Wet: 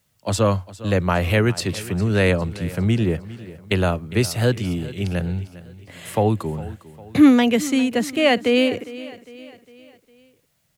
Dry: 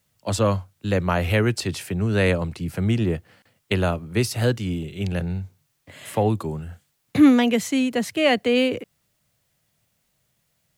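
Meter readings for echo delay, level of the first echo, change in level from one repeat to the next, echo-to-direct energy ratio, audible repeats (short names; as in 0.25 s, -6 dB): 0.405 s, -17.5 dB, -6.5 dB, -16.5 dB, 3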